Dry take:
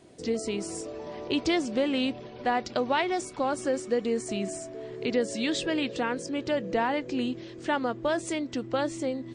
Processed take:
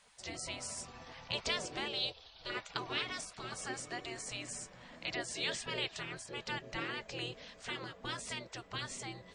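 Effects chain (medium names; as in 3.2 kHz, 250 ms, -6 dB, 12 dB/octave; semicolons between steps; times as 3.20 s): spectral gate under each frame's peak -15 dB weak; 1.88–2.50 s: graphic EQ 250/500/1000/2000/4000/8000 Hz -10/+3/-6/-12/+10/-8 dB; trim -1 dB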